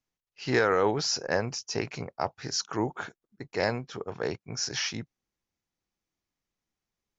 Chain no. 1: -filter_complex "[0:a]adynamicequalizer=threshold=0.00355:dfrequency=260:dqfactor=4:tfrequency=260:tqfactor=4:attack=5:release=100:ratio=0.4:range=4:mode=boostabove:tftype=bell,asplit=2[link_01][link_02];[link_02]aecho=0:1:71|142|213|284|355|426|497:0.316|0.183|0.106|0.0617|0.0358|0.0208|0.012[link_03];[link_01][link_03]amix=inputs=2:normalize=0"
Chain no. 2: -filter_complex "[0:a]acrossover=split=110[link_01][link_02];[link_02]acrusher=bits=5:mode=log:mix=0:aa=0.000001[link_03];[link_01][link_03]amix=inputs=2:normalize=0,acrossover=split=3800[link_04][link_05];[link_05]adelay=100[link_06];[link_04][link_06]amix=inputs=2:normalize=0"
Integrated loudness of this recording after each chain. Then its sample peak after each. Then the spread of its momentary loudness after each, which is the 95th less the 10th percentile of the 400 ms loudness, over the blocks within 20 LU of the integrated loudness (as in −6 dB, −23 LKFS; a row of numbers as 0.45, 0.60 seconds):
−29.0, −30.5 LKFS; −8.5, −12.0 dBFS; 13, 14 LU